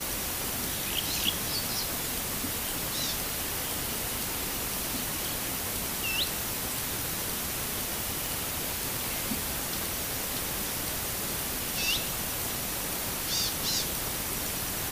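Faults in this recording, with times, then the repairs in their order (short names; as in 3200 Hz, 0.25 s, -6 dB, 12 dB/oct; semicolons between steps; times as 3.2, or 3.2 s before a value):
8.26 pop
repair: de-click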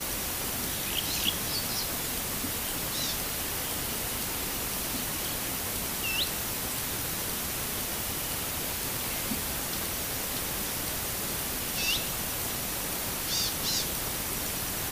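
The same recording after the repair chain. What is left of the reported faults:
none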